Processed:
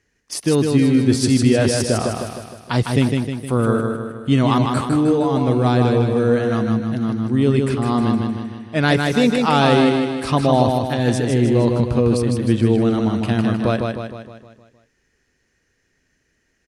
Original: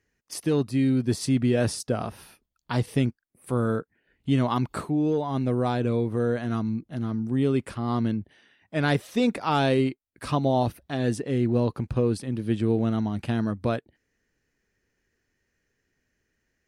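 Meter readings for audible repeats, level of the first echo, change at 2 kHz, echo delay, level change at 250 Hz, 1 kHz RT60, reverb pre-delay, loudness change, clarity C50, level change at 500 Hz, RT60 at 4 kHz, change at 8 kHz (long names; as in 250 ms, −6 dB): 6, −4.0 dB, +9.5 dB, 155 ms, +8.5 dB, no reverb audible, no reverb audible, +8.0 dB, no reverb audible, +8.5 dB, no reverb audible, +10.5 dB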